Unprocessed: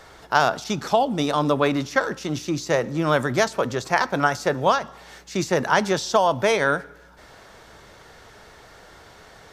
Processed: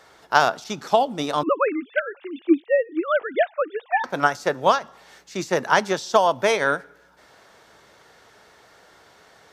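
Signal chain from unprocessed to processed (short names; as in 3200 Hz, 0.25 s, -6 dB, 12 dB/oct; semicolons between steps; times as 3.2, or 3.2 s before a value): 1.43–4.04 sine-wave speech; HPF 220 Hz 6 dB/oct; upward expander 1.5:1, over -29 dBFS; gain +3 dB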